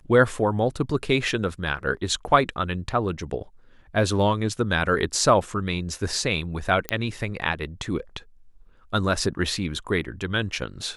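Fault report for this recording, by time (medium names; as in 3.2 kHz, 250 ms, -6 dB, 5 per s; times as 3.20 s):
6.89 s: pop -8 dBFS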